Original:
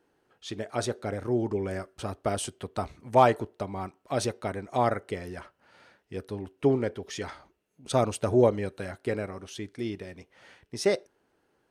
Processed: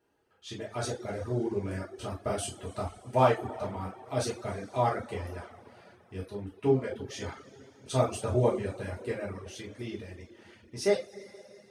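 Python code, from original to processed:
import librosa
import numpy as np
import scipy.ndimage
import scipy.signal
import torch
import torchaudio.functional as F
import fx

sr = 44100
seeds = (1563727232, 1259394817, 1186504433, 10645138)

y = fx.rev_double_slope(x, sr, seeds[0], early_s=0.4, late_s=3.0, knee_db=-18, drr_db=-6.0)
y = fx.dereverb_blind(y, sr, rt60_s=0.52)
y = y * librosa.db_to_amplitude(-8.5)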